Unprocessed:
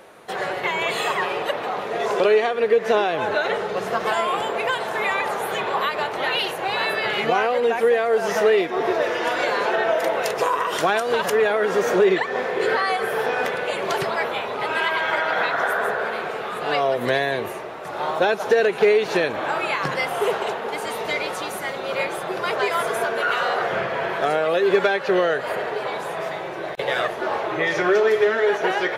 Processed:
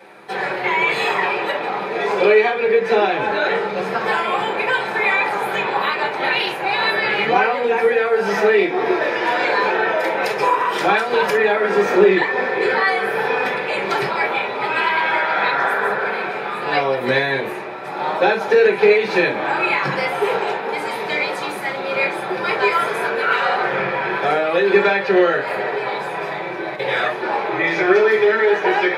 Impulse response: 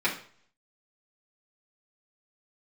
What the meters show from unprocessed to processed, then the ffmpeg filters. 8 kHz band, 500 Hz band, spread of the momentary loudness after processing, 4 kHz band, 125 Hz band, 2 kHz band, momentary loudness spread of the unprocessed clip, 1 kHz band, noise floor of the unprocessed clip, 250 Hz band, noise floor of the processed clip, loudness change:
n/a, +2.5 dB, 8 LU, +2.0 dB, +3.5 dB, +5.5 dB, 8 LU, +4.0 dB, -30 dBFS, +5.0 dB, -27 dBFS, +4.0 dB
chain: -filter_complex "[1:a]atrim=start_sample=2205,atrim=end_sample=3528[a];[0:a][a]afir=irnorm=-1:irlink=0,volume=-6.5dB"

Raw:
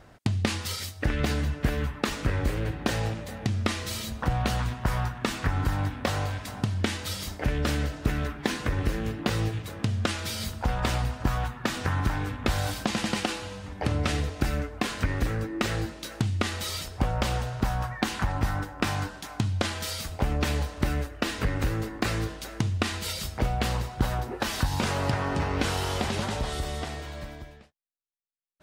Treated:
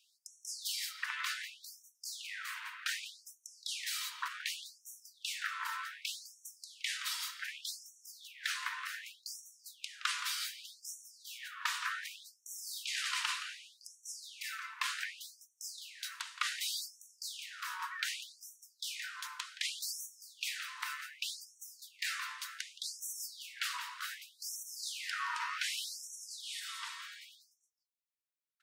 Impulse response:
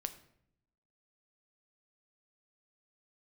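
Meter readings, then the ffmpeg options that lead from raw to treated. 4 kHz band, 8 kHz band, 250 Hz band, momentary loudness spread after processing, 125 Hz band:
-4.5 dB, -3.0 dB, under -40 dB, 13 LU, under -40 dB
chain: -filter_complex "[0:a]asplit=2[a][b];[b]adelay=170,highpass=300,lowpass=3.4k,asoftclip=type=hard:threshold=-20dB,volume=-7dB[c];[a][c]amix=inputs=2:normalize=0,afftfilt=real='re*gte(b*sr/1024,880*pow(5600/880,0.5+0.5*sin(2*PI*0.66*pts/sr)))':imag='im*gte(b*sr/1024,880*pow(5600/880,0.5+0.5*sin(2*PI*0.66*pts/sr)))':win_size=1024:overlap=0.75,volume=-3dB"

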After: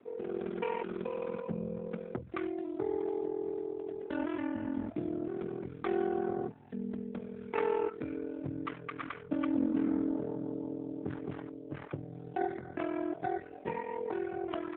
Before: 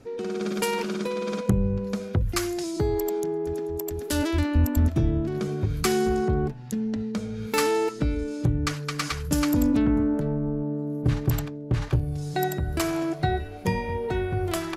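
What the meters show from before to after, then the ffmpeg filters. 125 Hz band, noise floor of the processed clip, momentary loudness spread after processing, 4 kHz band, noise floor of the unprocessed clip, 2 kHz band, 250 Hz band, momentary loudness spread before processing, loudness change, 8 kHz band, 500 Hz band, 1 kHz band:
-20.5 dB, -48 dBFS, 9 LU, under -20 dB, -37 dBFS, -11.5 dB, -9.0 dB, 7 LU, -10.0 dB, under -40 dB, -7.5 dB, -8.0 dB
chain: -filter_complex "[0:a]acrossover=split=210 2600:gain=0.126 1 0.224[a][b][c];[a][b][c]amix=inputs=3:normalize=0,aeval=exprs='val(0)*sin(2*PI*21*n/s)':c=same,volume=-3.5dB" -ar 8000 -c:a libopencore_amrnb -b:a 7950

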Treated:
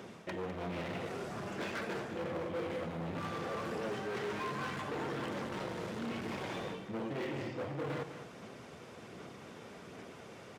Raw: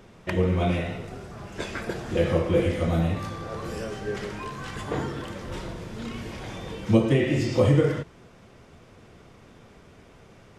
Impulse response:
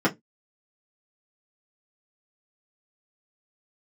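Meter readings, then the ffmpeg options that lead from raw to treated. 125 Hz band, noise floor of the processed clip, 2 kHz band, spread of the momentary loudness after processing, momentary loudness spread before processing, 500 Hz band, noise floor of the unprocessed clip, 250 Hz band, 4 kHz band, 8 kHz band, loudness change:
-18.0 dB, -52 dBFS, -7.0 dB, 12 LU, 16 LU, -12.0 dB, -52 dBFS, -13.0 dB, -8.5 dB, -9.5 dB, -13.0 dB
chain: -filter_complex "[0:a]acrossover=split=3000[a][b];[b]acompressor=threshold=-55dB:ratio=4:attack=1:release=60[c];[a][c]amix=inputs=2:normalize=0,aphaser=in_gain=1:out_gain=1:delay=2.3:decay=0.21:speed=1.3:type=sinusoidal,areverse,acompressor=threshold=-30dB:ratio=10,areverse,asoftclip=type=hard:threshold=-37dB,highpass=170,aecho=1:1:203:0.299,volume=2dB"

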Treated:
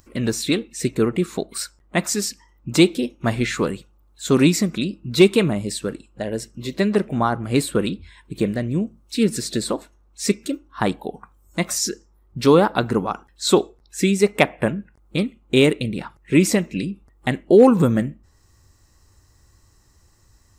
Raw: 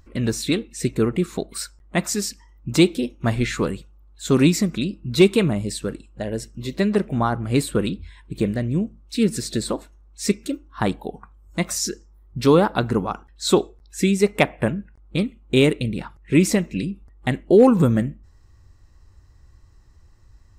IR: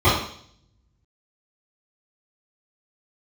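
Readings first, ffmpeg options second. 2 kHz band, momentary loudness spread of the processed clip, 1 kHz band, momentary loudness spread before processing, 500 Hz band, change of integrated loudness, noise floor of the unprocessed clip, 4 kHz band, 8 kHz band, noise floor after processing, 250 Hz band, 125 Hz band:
+2.0 dB, 14 LU, +2.0 dB, 14 LU, +1.5 dB, +1.0 dB, -52 dBFS, +2.0 dB, +2.0 dB, -57 dBFS, +0.5 dB, -1.0 dB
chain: -filter_complex "[0:a]lowshelf=f=87:g=-11.5,acrossover=split=6000[a][b];[b]acompressor=mode=upward:threshold=-57dB:ratio=2.5[c];[a][c]amix=inputs=2:normalize=0,volume=2dB"

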